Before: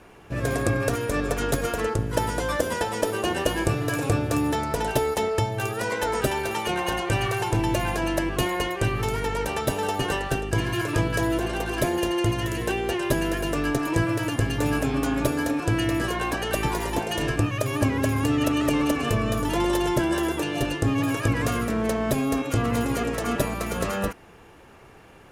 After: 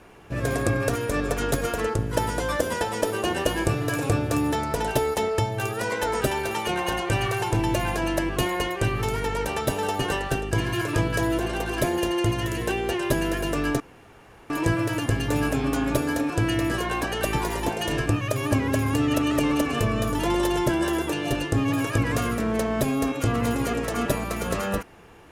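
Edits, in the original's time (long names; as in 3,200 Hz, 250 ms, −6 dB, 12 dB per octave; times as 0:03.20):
0:13.80: splice in room tone 0.70 s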